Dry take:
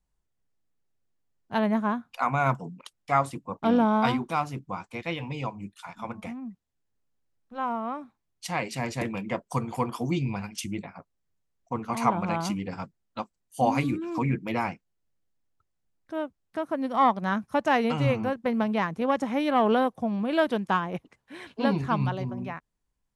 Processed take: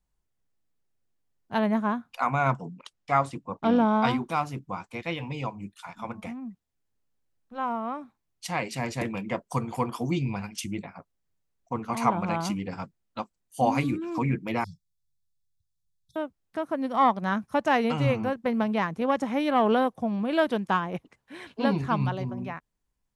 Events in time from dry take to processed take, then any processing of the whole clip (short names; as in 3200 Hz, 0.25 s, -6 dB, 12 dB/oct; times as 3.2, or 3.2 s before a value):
2.38–4.11 LPF 7600 Hz
14.64–16.16 brick-wall FIR band-stop 180–3300 Hz